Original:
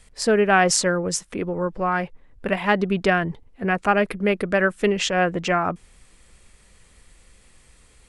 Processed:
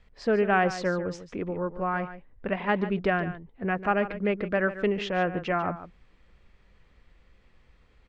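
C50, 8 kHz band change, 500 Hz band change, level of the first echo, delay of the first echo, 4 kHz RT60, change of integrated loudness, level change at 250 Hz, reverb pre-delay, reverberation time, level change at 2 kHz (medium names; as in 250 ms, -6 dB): no reverb, under -20 dB, -5.5 dB, -13.0 dB, 145 ms, no reverb, -6.0 dB, -5.0 dB, no reverb, no reverb, -7.0 dB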